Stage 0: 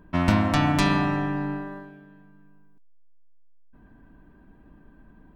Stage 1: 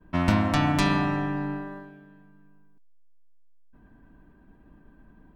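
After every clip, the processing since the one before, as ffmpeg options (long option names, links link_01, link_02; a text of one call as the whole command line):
ffmpeg -i in.wav -af "agate=range=-33dB:threshold=-51dB:ratio=3:detection=peak,volume=-1.5dB" out.wav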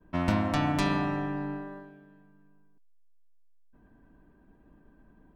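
ffmpeg -i in.wav -af "equalizer=frequency=490:width=0.93:gain=4,volume=-5.5dB" out.wav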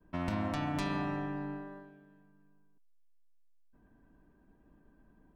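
ffmpeg -i in.wav -af "alimiter=limit=-19dB:level=0:latency=1:release=81,volume=-5dB" out.wav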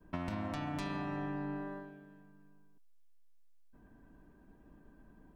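ffmpeg -i in.wav -af "acompressor=threshold=-39dB:ratio=6,volume=4dB" out.wav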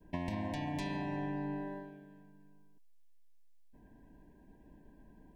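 ffmpeg -i in.wav -af "asuperstop=centerf=1300:order=20:qfactor=2.5,volume=1dB" out.wav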